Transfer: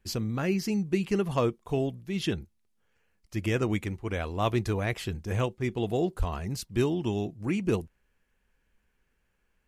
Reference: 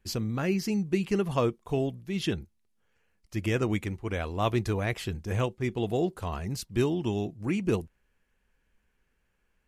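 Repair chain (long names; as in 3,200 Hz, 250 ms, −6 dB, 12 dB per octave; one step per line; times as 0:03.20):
clipped peaks rebuilt −14.5 dBFS
0:06.18–0:06.30: high-pass filter 140 Hz 24 dB per octave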